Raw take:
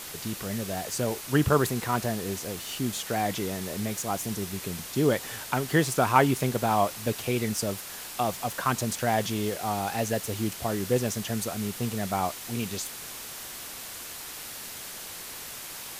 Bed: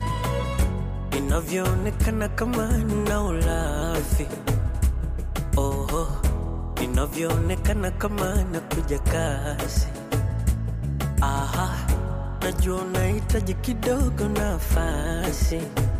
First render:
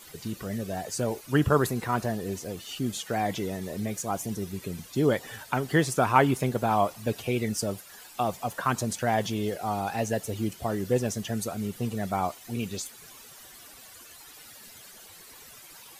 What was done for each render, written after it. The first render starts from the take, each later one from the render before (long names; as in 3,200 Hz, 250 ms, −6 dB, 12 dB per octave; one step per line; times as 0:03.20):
broadband denoise 13 dB, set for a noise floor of −40 dBFS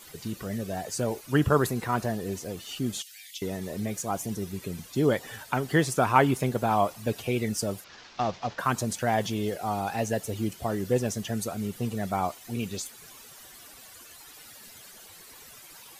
0:03.02–0:03.42: inverse Chebyshev high-pass filter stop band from 1,100 Hz, stop band 50 dB
0:07.84–0:08.59: variable-slope delta modulation 32 kbit/s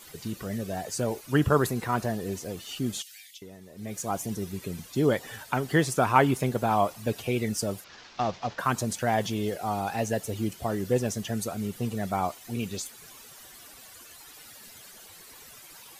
0:03.15–0:04.04: duck −13.5 dB, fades 0.29 s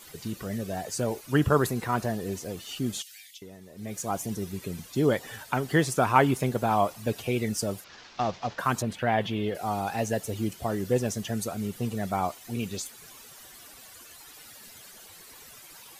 0:08.82–0:09.55: high shelf with overshoot 4,400 Hz −12.5 dB, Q 1.5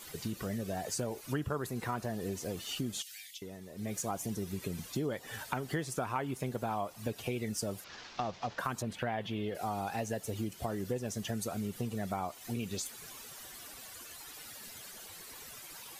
downward compressor 5 to 1, threshold −33 dBFS, peak gain reduction 17 dB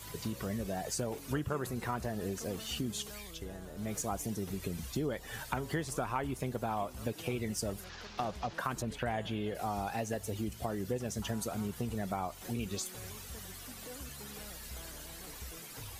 mix in bed −26 dB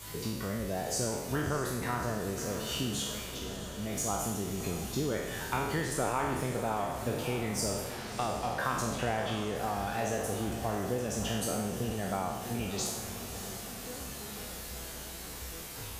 peak hold with a decay on every bin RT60 1.05 s
on a send: feedback delay with all-pass diffusion 626 ms, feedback 66%, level −11 dB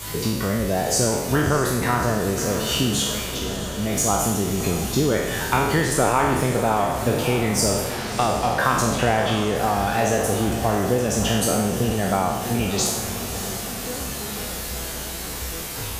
level +12 dB